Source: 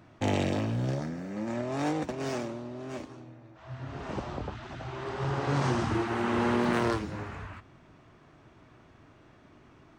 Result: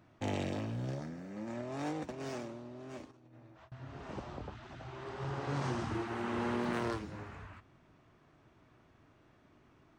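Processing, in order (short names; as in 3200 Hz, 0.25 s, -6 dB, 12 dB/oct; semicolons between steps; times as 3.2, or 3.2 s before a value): 3.11–3.72 negative-ratio compressor -50 dBFS, ratio -0.5; gain -8 dB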